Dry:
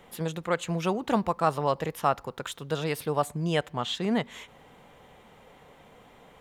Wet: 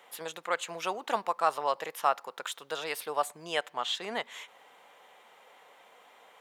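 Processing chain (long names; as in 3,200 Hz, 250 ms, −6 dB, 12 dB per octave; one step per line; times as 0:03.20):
high-pass filter 660 Hz 12 dB per octave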